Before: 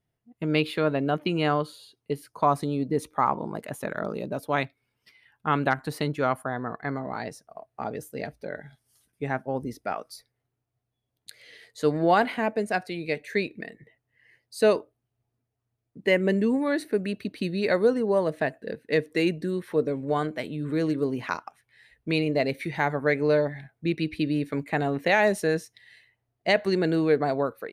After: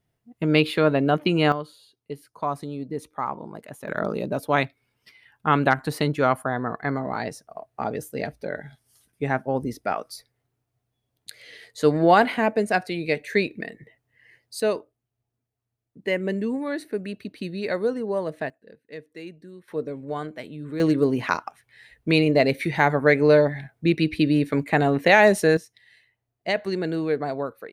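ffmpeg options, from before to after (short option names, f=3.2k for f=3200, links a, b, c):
-af "asetnsamples=n=441:p=0,asendcmd='1.52 volume volume -5dB;3.88 volume volume 4.5dB;14.6 volume volume -3dB;18.5 volume volume -15dB;19.68 volume volume -4.5dB;20.8 volume volume 6dB;25.57 volume volume -2.5dB',volume=5dB"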